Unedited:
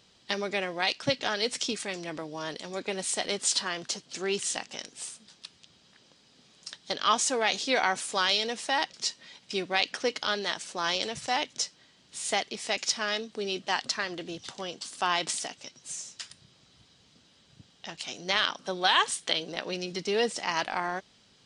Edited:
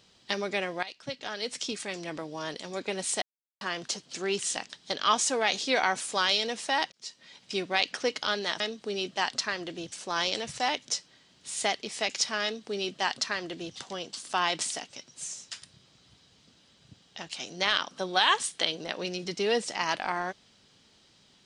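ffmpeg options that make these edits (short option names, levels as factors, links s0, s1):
-filter_complex "[0:a]asplit=8[s0][s1][s2][s3][s4][s5][s6][s7];[s0]atrim=end=0.83,asetpts=PTS-STARTPTS,afade=t=out:st=0.826:d=0.004:c=hsin:silence=0.141254[s8];[s1]atrim=start=0.83:end=3.22,asetpts=PTS-STARTPTS,afade=t=in:d=1.24:silence=0.141254,afade=t=out:st=2.386:d=0.004:c=hsin[s9];[s2]atrim=start=3.22:end=3.61,asetpts=PTS-STARTPTS,volume=0[s10];[s3]atrim=start=3.61:end=4.702,asetpts=PTS-STARTPTS,afade=t=in:d=0.004:c=hsin[s11];[s4]atrim=start=6.698:end=8.92,asetpts=PTS-STARTPTS,afade=t=out:st=2.218:d=0.004:c=hsin[s12];[s5]atrim=start=8.92:end=10.602,asetpts=PTS-STARTPTS,afade=t=in:d=0.5[s13];[s6]atrim=start=13.108:end=14.432[s14];[s7]atrim=start=10.598[s15];[s8][s9][s10][s11]concat=n=4:v=0:a=1[s16];[s12][s13]concat=n=2:v=0:a=1[s17];[s16][s17]acrossfade=d=0.004:c1=hsin:c2=hsin[s18];[s18][s14]acrossfade=d=0.004:c1=hsin:c2=hsin[s19];[s19][s15]acrossfade=d=0.004:c1=hsin:c2=hsin"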